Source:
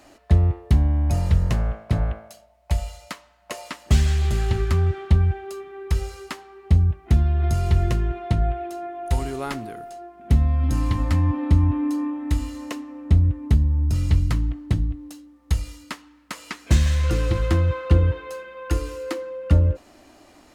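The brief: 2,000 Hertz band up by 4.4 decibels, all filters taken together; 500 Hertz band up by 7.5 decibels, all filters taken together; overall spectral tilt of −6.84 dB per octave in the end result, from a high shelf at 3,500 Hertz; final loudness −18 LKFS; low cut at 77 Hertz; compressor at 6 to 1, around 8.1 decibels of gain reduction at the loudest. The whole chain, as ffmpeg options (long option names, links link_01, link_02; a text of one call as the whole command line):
ffmpeg -i in.wav -af "highpass=77,equalizer=frequency=500:width_type=o:gain=9,equalizer=frequency=2000:width_type=o:gain=7,highshelf=frequency=3500:gain=-7.5,acompressor=threshold=-22dB:ratio=6,volume=10.5dB" out.wav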